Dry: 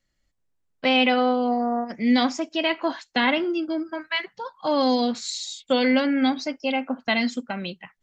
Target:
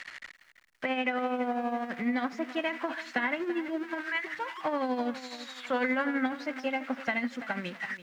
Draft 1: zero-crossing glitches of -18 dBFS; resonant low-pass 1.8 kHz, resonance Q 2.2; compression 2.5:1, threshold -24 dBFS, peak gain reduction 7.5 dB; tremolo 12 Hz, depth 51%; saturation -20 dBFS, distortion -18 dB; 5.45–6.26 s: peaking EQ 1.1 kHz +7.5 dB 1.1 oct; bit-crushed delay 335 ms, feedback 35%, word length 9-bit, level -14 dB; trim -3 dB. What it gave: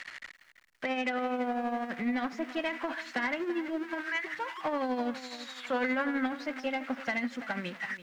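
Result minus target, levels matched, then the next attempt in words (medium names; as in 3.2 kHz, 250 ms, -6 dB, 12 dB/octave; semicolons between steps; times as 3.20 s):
saturation: distortion +18 dB
zero-crossing glitches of -18 dBFS; resonant low-pass 1.8 kHz, resonance Q 2.2; compression 2.5:1, threshold -24 dBFS, peak gain reduction 7.5 dB; tremolo 12 Hz, depth 51%; saturation -8.5 dBFS, distortion -36 dB; 5.45–6.26 s: peaking EQ 1.1 kHz +7.5 dB 1.1 oct; bit-crushed delay 335 ms, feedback 35%, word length 9-bit, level -14 dB; trim -3 dB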